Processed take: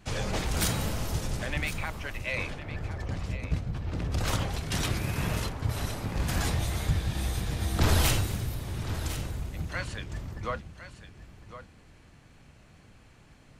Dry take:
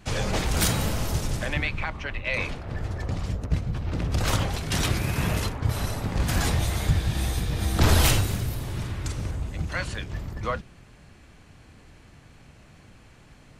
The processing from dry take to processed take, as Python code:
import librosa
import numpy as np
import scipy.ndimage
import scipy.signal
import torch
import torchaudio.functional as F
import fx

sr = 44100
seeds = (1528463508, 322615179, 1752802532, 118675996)

y = x + 10.0 ** (-12.5 / 20.0) * np.pad(x, (int(1058 * sr / 1000.0), 0))[:len(x)]
y = F.gain(torch.from_numpy(y), -4.5).numpy()